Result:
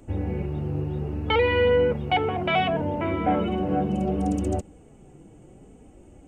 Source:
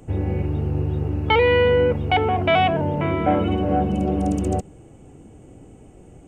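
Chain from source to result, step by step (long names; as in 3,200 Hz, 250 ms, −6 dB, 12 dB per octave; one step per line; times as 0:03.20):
flanger 0.66 Hz, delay 3.1 ms, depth 3.2 ms, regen −33%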